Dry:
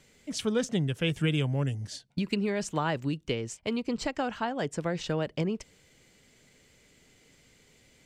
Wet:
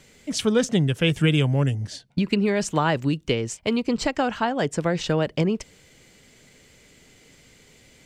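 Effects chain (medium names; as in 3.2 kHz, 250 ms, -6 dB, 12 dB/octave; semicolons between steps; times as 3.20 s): 1.70–2.45 s: treble shelf 3.8 kHz -> 5.9 kHz -7 dB; trim +7.5 dB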